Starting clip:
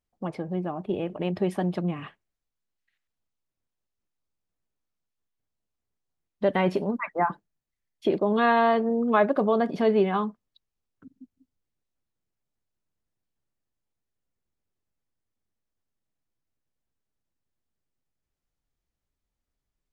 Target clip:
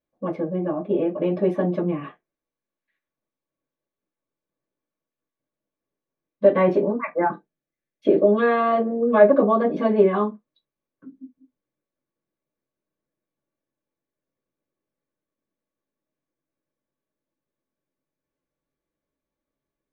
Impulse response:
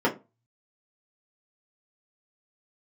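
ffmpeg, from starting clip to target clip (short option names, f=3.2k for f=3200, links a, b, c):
-filter_complex "[0:a]asettb=1/sr,asplit=3[a][b][c];[a]atrim=end=7.084[d];[b]atrim=start=7.08:end=9.26,asetpts=PTS-STARTPTS,afade=t=in:d=0.004:c=qsin,afade=t=out:st=2.176:d=0.004:c=qsin,equalizer=f=1k:t=o:w=0.22:g=-13[e];[c]atrim=start=9.256[f];[d][e]acrossfade=d=0.004:c1=hsin:c2=qsin[g];[g][f]acrossfade=d=0.004:c1=qsin:c2=hsin[h];[1:a]atrim=start_sample=2205,atrim=end_sample=4410,asetrate=52920,aresample=44100[i];[h][i]afir=irnorm=-1:irlink=0,volume=-11dB"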